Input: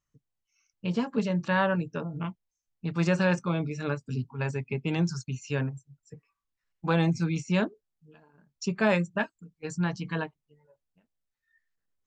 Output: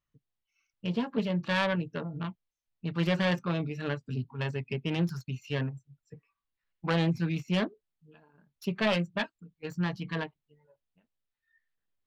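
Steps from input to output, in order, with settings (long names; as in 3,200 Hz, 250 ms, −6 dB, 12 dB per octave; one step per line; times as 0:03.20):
phase distortion by the signal itself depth 0.28 ms
high shelf with overshoot 4,900 Hz −8.5 dB, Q 1.5
level −2 dB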